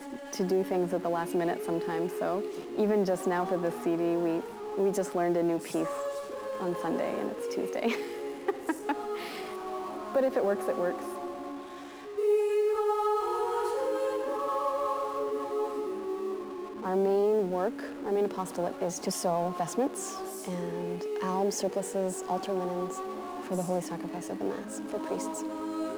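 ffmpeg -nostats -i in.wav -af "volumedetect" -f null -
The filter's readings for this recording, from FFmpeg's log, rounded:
mean_volume: -30.8 dB
max_volume: -15.7 dB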